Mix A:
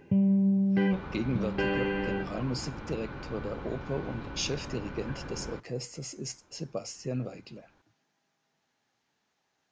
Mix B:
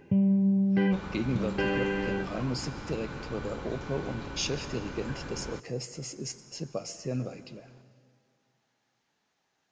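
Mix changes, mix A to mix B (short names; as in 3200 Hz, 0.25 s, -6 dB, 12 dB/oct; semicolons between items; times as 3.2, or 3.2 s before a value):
second sound: remove air absorption 230 m; reverb: on, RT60 2.1 s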